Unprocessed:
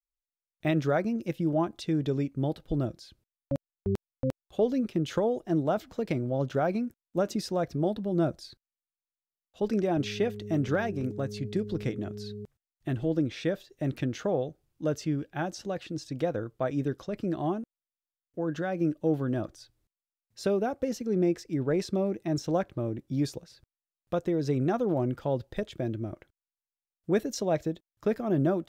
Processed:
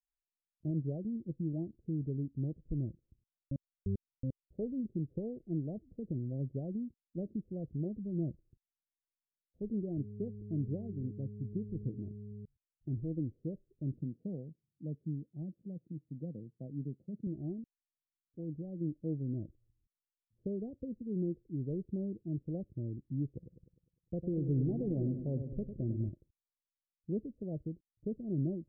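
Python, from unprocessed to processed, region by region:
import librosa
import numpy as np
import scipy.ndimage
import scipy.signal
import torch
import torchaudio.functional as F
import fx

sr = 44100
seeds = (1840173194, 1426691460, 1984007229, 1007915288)

y = fx.chain(x, sr, fx.highpass_res(hz=180.0, q=2.0),
    fx.peak_eq(hz=330.0, db=-6.0, octaves=2.3), at=(13.99, 17.27))
y = fx.chain(y, sr, fx.echo_feedback(ms=101, feedback_pct=57, wet_db=-8.5),
    fx.leveller(passes=1), at=(23.35, 26.09))
y = fx.wiener(y, sr, points=41)
y = scipy.signal.sosfilt(scipy.signal.cheby2(4, 60, 1300.0, 'lowpass', fs=sr, output='sos'), y)
y = y + 0.35 * np.pad(y, (int(1.5 * sr / 1000.0), 0))[:len(y)]
y = y * librosa.db_to_amplitude(-5.5)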